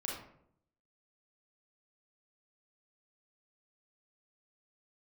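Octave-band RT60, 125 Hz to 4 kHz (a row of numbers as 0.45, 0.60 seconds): 0.90, 0.85, 0.75, 0.60, 0.50, 0.35 seconds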